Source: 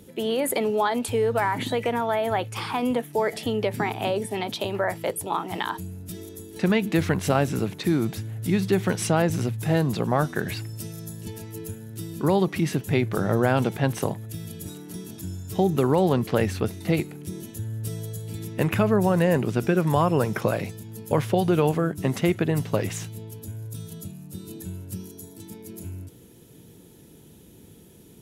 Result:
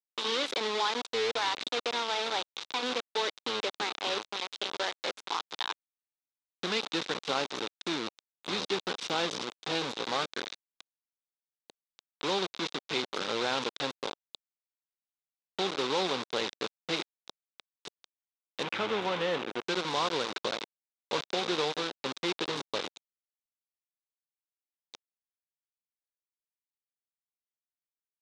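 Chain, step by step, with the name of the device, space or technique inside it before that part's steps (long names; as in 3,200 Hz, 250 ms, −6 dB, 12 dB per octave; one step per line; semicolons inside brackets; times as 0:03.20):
hand-held game console (bit reduction 4 bits; loudspeaker in its box 420–5,900 Hz, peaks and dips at 650 Hz −7 dB, 1,800 Hz −4 dB, 3,700 Hz +9 dB)
0:18.63–0:19.62: flat-topped bell 6,400 Hz −10 dB
level −6 dB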